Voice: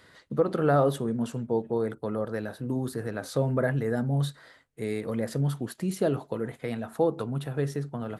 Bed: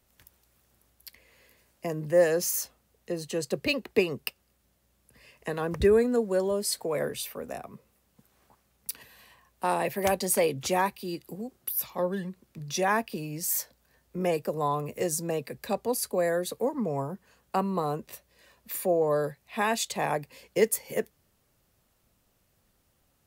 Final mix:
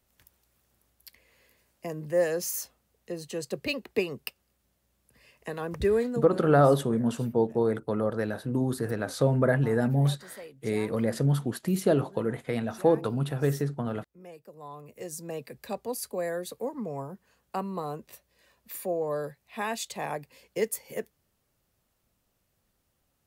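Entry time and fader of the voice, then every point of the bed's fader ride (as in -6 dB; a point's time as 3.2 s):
5.85 s, +2.5 dB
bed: 6.06 s -3.5 dB
6.52 s -20 dB
14.39 s -20 dB
15.41 s -5 dB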